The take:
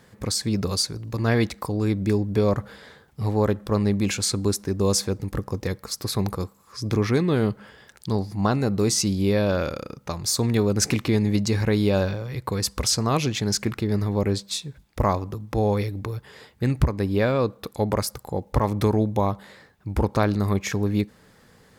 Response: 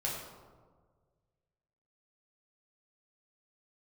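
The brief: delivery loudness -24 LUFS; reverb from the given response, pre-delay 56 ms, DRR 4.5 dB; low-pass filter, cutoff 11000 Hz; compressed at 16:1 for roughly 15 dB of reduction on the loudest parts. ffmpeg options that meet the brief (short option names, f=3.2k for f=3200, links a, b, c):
-filter_complex "[0:a]lowpass=11k,acompressor=threshold=-28dB:ratio=16,asplit=2[a][b];[1:a]atrim=start_sample=2205,adelay=56[c];[b][c]afir=irnorm=-1:irlink=0,volume=-8.5dB[d];[a][d]amix=inputs=2:normalize=0,volume=8.5dB"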